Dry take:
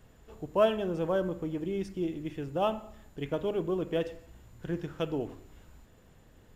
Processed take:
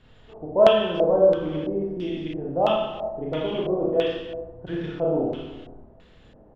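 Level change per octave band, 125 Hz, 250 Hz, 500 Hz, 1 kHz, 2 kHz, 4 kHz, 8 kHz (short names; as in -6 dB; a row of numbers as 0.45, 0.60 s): +4.0 dB, +6.0 dB, +10.0 dB, +8.5 dB, +6.5 dB, +11.0 dB, n/a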